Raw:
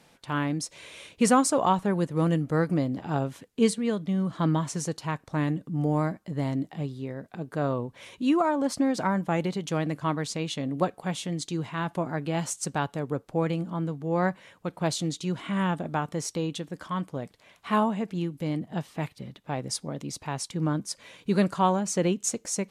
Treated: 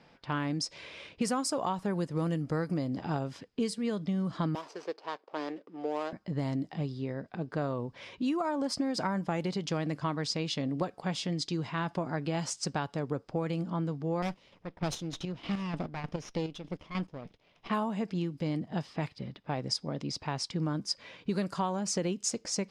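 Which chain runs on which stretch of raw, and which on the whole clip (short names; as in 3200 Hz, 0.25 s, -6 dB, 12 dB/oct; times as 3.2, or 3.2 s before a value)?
4.55–6.13 median filter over 25 samples + Chebyshev high-pass 400 Hz, order 3
14.22–17.7 minimum comb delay 0.31 ms + chopper 3.3 Hz, depth 60%, duty 40%
whole clip: low-pass opened by the level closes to 2800 Hz, open at -20.5 dBFS; bell 5000 Hz +12 dB 0.22 oct; compressor 6:1, threshold -28 dBFS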